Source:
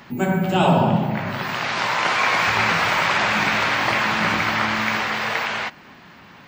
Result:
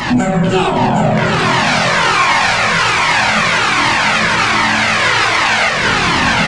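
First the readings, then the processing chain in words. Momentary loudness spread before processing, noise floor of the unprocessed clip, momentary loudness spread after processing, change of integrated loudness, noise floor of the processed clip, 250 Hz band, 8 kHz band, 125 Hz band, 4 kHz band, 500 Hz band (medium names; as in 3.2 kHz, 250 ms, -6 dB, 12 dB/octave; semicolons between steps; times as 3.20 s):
7 LU, -46 dBFS, 2 LU, +8.0 dB, -15 dBFS, +7.5 dB, +13.5 dB, +7.0 dB, +10.5 dB, +7.5 dB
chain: recorder AGC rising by 45 dB/s; treble shelf 5.2 kHz +6 dB; compression 16:1, threshold -32 dBFS, peak gain reduction 21 dB; saturation -34 dBFS, distortion -12 dB; doubling 24 ms -5 dB; two-band feedback delay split 1.4 kHz, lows 329 ms, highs 763 ms, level -4 dB; resampled via 22.05 kHz; loudness maximiser +27 dB; Shepard-style flanger falling 1.3 Hz; trim +1.5 dB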